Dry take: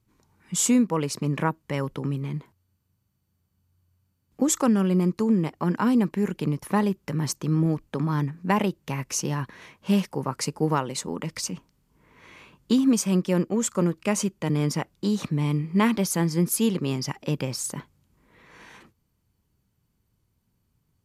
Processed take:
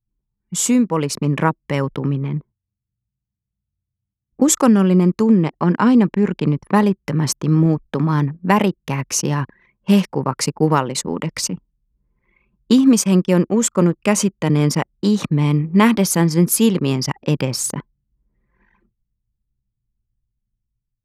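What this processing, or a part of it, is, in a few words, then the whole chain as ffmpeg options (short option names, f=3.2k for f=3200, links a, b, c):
voice memo with heavy noise removal: -filter_complex "[0:a]asettb=1/sr,asplit=3[a][b][c];[a]atrim=end=5.354[d];[b]atrim=start=5.35:end=6.75,asetpts=PTS-STARTPTS,afade=t=in:d=0.004:c=qsin,afade=t=out:st=1.396:d=0.004:c=qsin,lowpass=7k[e];[c]atrim=start=6.746[f];[d][e]acrossfade=d=0.004:c1=hsin:c2=qsin[g];[g][f]acrossfade=d=0.004:c1=qsin:c2=hsin,anlmdn=1,dynaudnorm=f=360:g=5:m=6dB,volume=2.5dB"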